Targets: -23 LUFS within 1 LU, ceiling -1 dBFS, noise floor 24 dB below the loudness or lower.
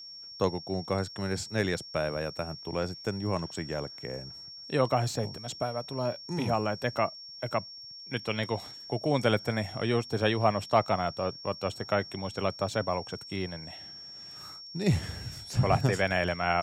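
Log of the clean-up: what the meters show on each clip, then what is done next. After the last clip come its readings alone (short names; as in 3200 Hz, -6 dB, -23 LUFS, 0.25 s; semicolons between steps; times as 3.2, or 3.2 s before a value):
steady tone 5500 Hz; tone level -43 dBFS; loudness -31.0 LUFS; peak -9.5 dBFS; loudness target -23.0 LUFS
-> notch 5500 Hz, Q 30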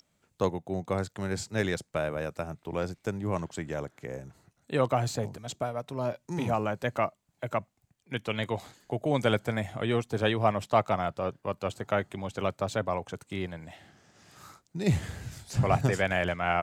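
steady tone none; loudness -31.0 LUFS; peak -9.5 dBFS; loudness target -23.0 LUFS
-> gain +8 dB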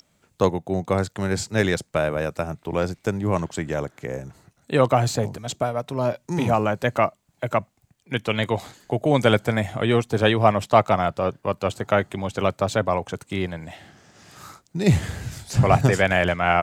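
loudness -23.0 LUFS; peak -1.5 dBFS; noise floor -67 dBFS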